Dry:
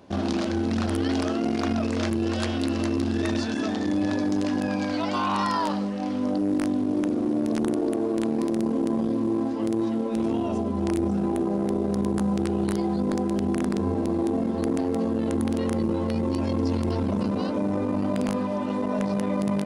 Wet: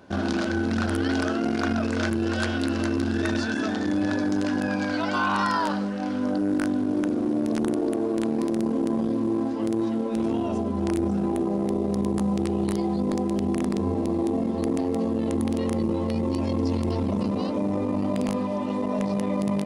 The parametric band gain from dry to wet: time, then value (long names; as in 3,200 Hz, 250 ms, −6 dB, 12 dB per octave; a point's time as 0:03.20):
parametric band 1,500 Hz 0.21 octaves
0:06.70 +12 dB
0:07.41 +1.5 dB
0:11.09 +1.5 dB
0:11.71 −10 dB